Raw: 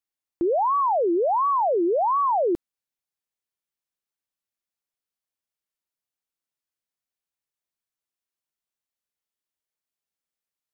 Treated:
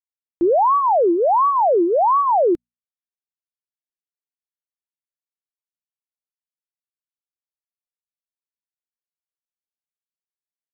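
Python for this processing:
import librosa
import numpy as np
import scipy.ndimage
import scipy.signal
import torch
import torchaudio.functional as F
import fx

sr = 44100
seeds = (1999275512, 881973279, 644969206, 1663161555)

y = fx.dereverb_blind(x, sr, rt60_s=1.7)
y = fx.hum_notches(y, sr, base_hz=60, count=4)
y = fx.upward_expand(y, sr, threshold_db=-44.0, expansion=2.5)
y = F.gain(torch.from_numpy(y), 6.5).numpy()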